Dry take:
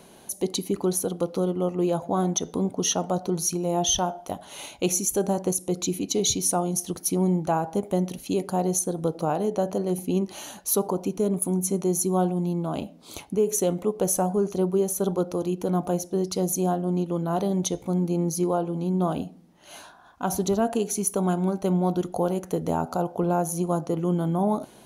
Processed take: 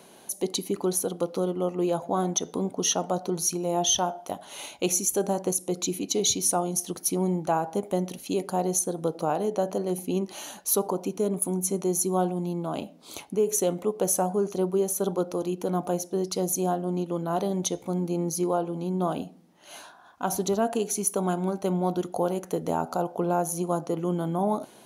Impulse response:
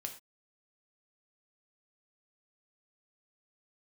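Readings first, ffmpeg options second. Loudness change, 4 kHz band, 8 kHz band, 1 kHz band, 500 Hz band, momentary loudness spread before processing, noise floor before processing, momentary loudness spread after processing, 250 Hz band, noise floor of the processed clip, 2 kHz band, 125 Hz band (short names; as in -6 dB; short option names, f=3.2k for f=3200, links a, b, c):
-1.5 dB, 0.0 dB, 0.0 dB, -0.5 dB, -1.0 dB, 5 LU, -50 dBFS, 6 LU, -3.5 dB, -52 dBFS, 0.0 dB, -4.5 dB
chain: -af "highpass=f=240:p=1"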